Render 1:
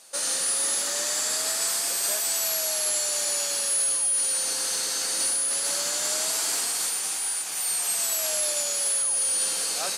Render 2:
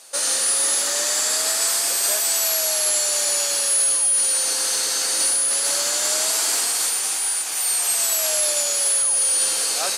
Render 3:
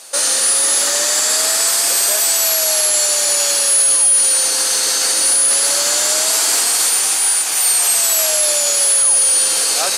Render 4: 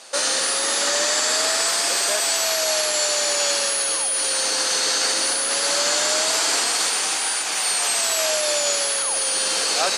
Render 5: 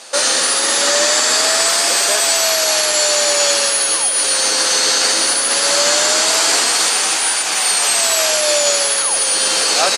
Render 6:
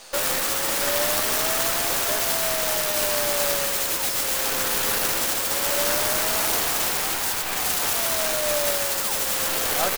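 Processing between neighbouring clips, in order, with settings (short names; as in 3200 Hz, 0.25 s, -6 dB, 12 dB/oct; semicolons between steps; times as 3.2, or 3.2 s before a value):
HPF 250 Hz 12 dB/oct; gain +5.5 dB
limiter -14.5 dBFS, peak gain reduction 4.5 dB; gain +8 dB
air absorption 77 m
doubler 12 ms -10.5 dB; gain +6 dB
tracing distortion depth 0.38 ms; gain -7.5 dB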